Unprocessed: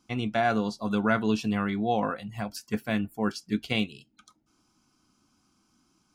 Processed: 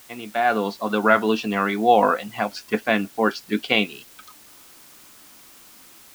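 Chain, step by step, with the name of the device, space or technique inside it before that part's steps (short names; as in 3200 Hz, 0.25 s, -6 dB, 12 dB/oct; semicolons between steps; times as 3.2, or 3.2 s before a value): dictaphone (BPF 340–3500 Hz; AGC gain up to 15 dB; wow and flutter; white noise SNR 25 dB); gain -1 dB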